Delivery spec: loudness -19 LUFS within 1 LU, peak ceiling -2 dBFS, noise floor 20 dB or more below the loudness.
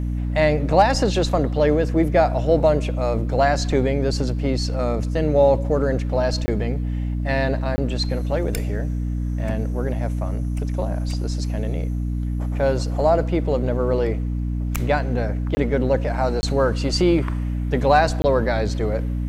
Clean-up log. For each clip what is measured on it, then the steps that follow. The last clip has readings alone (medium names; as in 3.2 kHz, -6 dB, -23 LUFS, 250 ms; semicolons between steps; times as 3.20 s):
dropouts 5; longest dropout 20 ms; hum 60 Hz; highest harmonic 300 Hz; hum level -21 dBFS; loudness -21.5 LUFS; peak level -4.0 dBFS; loudness target -19.0 LUFS
-> interpolate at 6.46/7.76/15.55/16.41/18.22 s, 20 ms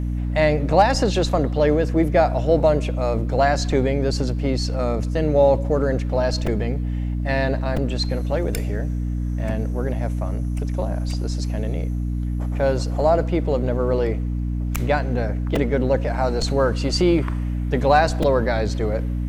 dropouts 0; hum 60 Hz; highest harmonic 300 Hz; hum level -21 dBFS
-> hum notches 60/120/180/240/300 Hz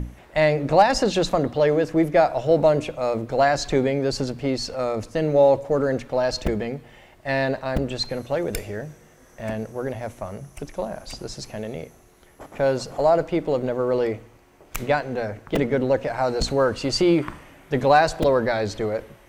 hum not found; loudness -22.5 LUFS; peak level -4.5 dBFS; loudness target -19.0 LUFS
-> trim +3.5 dB; peak limiter -2 dBFS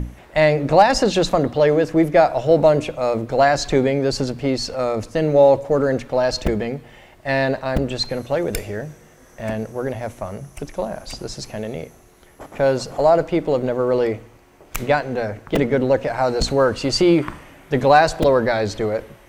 loudness -19.0 LUFS; peak level -2.0 dBFS; noise floor -49 dBFS